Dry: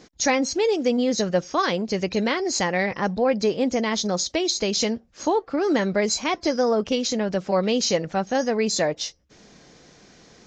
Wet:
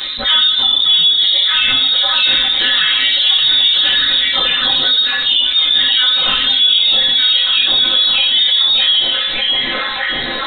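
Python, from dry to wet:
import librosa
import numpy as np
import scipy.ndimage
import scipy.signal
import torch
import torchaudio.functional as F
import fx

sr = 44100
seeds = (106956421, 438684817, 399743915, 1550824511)

y = fx.pitch_bins(x, sr, semitones=3.0)
y = fx.stiff_resonator(y, sr, f0_hz=61.0, decay_s=0.24, stiffness=0.008)
y = fx.echo_stepped(y, sr, ms=604, hz=1200.0, octaves=0.7, feedback_pct=70, wet_db=-0.5)
y = fx.room_shoebox(y, sr, seeds[0], volume_m3=110.0, walls='mixed', distance_m=1.1)
y = fx.freq_invert(y, sr, carrier_hz=4000)
y = fx.env_flatten(y, sr, amount_pct=70)
y = y * 10.0 ** (6.0 / 20.0)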